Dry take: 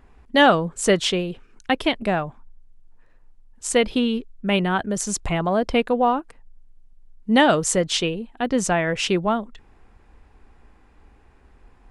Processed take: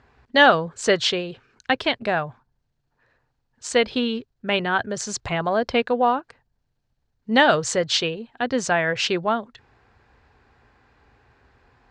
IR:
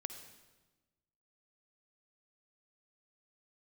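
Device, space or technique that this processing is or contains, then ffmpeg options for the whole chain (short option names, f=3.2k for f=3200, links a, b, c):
car door speaker: -af "highpass=85,equalizer=f=120:t=q:w=4:g=6,equalizer=f=190:t=q:w=4:g=-9,equalizer=f=310:t=q:w=4:g=-6,equalizer=f=1.6k:t=q:w=4:g=5,equalizer=f=4.3k:t=q:w=4:g=6,lowpass=f=6.8k:w=0.5412,lowpass=f=6.8k:w=1.3066"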